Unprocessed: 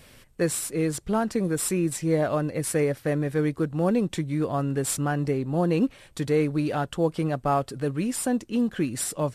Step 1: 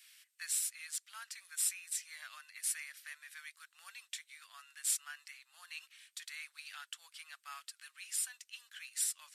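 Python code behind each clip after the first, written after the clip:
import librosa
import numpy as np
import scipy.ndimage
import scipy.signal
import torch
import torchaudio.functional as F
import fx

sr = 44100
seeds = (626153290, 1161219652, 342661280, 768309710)

y = scipy.signal.sosfilt(scipy.signal.bessel(6, 2500.0, 'highpass', norm='mag', fs=sr, output='sos'), x)
y = y * librosa.db_to_amplitude(-4.0)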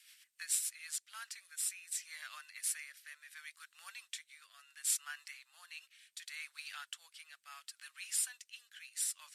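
y = fx.rotary_switch(x, sr, hz=7.0, then_hz=0.7, switch_at_s=0.47)
y = y * librosa.db_to_amplitude(2.5)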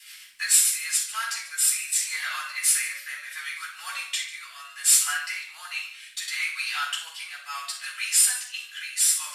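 y = x + 10.0 ** (-16.0 / 20.0) * np.pad(x, (int(144 * sr / 1000.0), 0))[:len(x)]
y = fx.room_shoebox(y, sr, seeds[0], volume_m3=540.0, walls='furnished', distance_m=9.2)
y = y * librosa.db_to_amplitude(7.0)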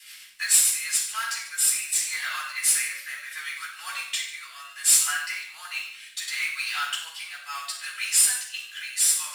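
y = fx.mod_noise(x, sr, seeds[1], snr_db=22)
y = y + 10.0 ** (-13.5 / 20.0) * np.pad(y, (int(94 * sr / 1000.0), 0))[:len(y)]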